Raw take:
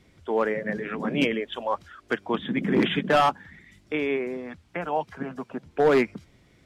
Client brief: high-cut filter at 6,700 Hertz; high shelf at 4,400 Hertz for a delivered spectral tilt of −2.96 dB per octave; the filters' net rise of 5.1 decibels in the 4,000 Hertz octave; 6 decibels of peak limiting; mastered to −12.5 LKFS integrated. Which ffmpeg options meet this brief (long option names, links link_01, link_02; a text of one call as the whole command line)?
ffmpeg -i in.wav -af "lowpass=6700,equalizer=frequency=4000:width_type=o:gain=5.5,highshelf=frequency=4400:gain=4,volume=15dB,alimiter=limit=-0.5dB:level=0:latency=1" out.wav